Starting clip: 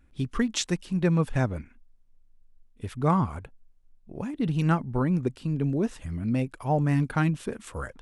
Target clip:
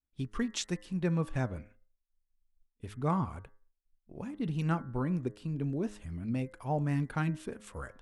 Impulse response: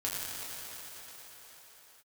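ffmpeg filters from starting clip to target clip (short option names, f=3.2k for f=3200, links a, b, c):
-af "bandreject=f=104.2:t=h:w=4,bandreject=f=208.4:t=h:w=4,bandreject=f=312.6:t=h:w=4,bandreject=f=416.8:t=h:w=4,bandreject=f=521:t=h:w=4,bandreject=f=625.2:t=h:w=4,bandreject=f=729.4:t=h:w=4,bandreject=f=833.6:t=h:w=4,bandreject=f=937.8:t=h:w=4,bandreject=f=1.042k:t=h:w=4,bandreject=f=1.1462k:t=h:w=4,bandreject=f=1.2504k:t=h:w=4,bandreject=f=1.3546k:t=h:w=4,bandreject=f=1.4588k:t=h:w=4,bandreject=f=1.563k:t=h:w=4,bandreject=f=1.6672k:t=h:w=4,bandreject=f=1.7714k:t=h:w=4,bandreject=f=1.8756k:t=h:w=4,bandreject=f=1.9798k:t=h:w=4,bandreject=f=2.084k:t=h:w=4,agate=range=-33dB:threshold=-45dB:ratio=3:detection=peak,volume=-7dB"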